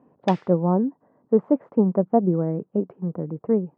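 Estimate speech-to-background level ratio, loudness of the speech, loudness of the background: 18.5 dB, -23.5 LUFS, -42.0 LUFS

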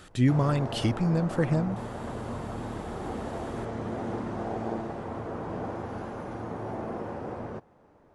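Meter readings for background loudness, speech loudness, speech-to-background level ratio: -36.0 LUFS, -27.0 LUFS, 9.0 dB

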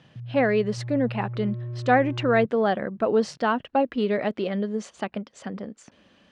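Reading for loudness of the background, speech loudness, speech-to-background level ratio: -35.0 LUFS, -25.0 LUFS, 10.0 dB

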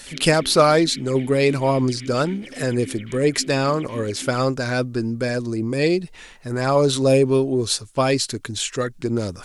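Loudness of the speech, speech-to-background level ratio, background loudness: -20.5 LUFS, 18.0 dB, -38.5 LUFS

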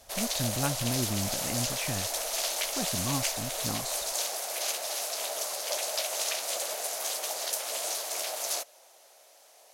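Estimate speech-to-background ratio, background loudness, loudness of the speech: -5.0 dB, -30.5 LUFS, -35.5 LUFS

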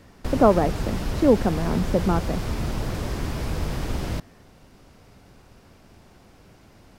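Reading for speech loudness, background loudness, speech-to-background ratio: -23.0 LUFS, -29.5 LUFS, 6.5 dB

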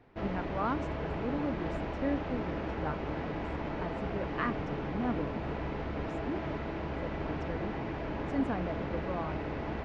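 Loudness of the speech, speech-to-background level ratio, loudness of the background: -39.0 LUFS, -2.0 dB, -37.0 LUFS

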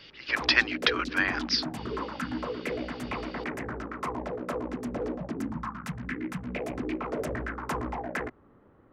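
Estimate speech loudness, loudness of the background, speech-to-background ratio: -26.0 LUFS, -34.5 LUFS, 8.5 dB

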